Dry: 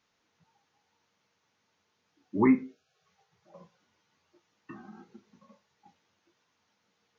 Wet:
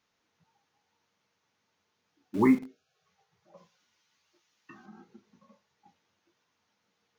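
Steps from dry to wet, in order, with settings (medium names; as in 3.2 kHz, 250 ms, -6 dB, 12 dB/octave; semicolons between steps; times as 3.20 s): 3.57–4.86 s: tilt shelf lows -6.5 dB, about 1.4 kHz; in parallel at -11 dB: bit crusher 6-bit; on the sum: trim -2 dB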